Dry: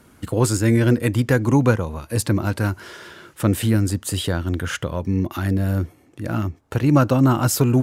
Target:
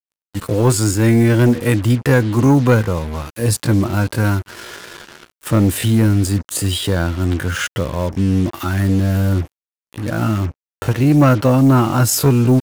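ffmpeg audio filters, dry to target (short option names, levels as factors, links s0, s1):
-af "atempo=0.62,acrusher=bits=5:mix=0:aa=0.5,asoftclip=type=tanh:threshold=0.335,volume=1.88"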